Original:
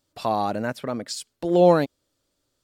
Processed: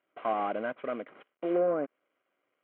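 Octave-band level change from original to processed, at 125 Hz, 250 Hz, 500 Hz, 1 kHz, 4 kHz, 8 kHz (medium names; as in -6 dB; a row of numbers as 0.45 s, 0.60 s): -21.0 dB, -10.5 dB, -9.0 dB, -8.5 dB, under -15 dB, under -40 dB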